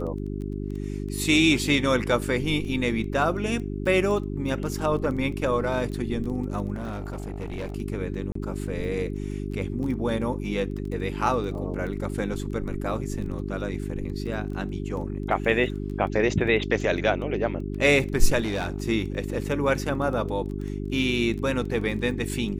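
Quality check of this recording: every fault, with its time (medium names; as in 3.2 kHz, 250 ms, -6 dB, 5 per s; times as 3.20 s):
crackle 10 per s -33 dBFS
hum 50 Hz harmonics 8 -31 dBFS
6.74–7.76 s: clipped -28 dBFS
8.32–8.35 s: dropout 34 ms
18.41–18.82 s: clipped -23.5 dBFS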